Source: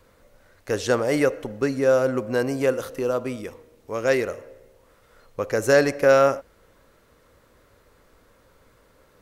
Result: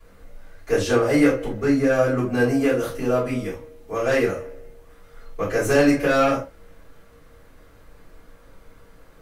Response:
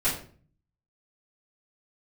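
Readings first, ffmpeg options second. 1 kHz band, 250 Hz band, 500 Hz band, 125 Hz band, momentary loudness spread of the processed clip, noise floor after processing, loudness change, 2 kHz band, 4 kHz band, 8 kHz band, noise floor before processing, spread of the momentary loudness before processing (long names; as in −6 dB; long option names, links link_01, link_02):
+1.5 dB, +6.5 dB, −0.5 dB, +4.5 dB, 13 LU, −50 dBFS, +1.5 dB, +1.5 dB, +1.5 dB, +0.5 dB, −59 dBFS, 16 LU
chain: -filter_complex "[0:a]asoftclip=type=tanh:threshold=-14.5dB[link_01];[1:a]atrim=start_sample=2205,atrim=end_sample=4410,asetrate=48510,aresample=44100[link_02];[link_01][link_02]afir=irnorm=-1:irlink=0,volume=-5dB"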